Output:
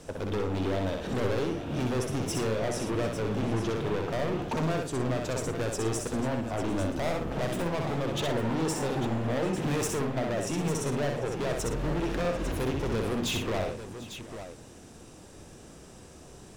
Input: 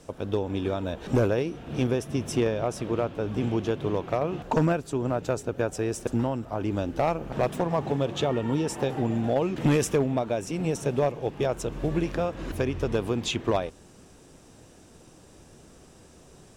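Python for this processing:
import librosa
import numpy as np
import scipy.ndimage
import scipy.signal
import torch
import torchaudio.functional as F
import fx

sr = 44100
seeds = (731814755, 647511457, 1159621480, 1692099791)

p1 = fx.rider(x, sr, range_db=10, speed_s=0.5)
p2 = x + F.gain(torch.from_numpy(p1), 1.5).numpy()
p3 = np.clip(p2, -10.0 ** (-23.0 / 20.0), 10.0 ** (-23.0 / 20.0))
p4 = fx.echo_multitap(p3, sr, ms=(63, 113, 746, 849), db=(-4.0, -13.0, -19.5, -10.5))
y = F.gain(torch.from_numpy(p4), -5.5).numpy()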